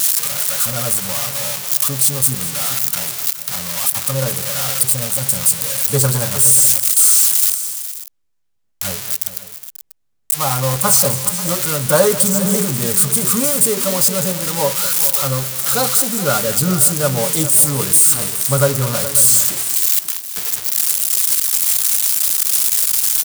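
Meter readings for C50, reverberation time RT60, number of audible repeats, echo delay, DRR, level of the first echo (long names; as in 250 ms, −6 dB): no reverb audible, no reverb audible, 3, 208 ms, no reverb audible, −16.0 dB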